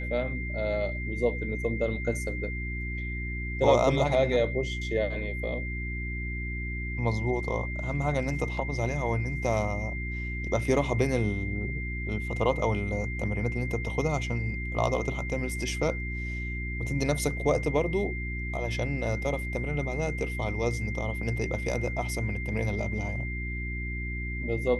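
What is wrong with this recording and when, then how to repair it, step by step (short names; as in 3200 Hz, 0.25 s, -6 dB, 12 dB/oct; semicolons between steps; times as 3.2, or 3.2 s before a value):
hum 60 Hz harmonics 6 -34 dBFS
tone 2100 Hz -36 dBFS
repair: notch 2100 Hz, Q 30; de-hum 60 Hz, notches 6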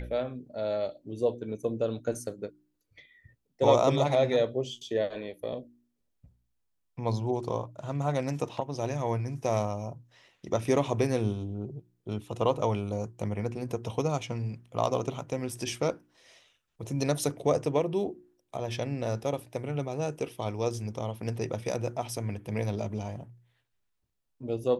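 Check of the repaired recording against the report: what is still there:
none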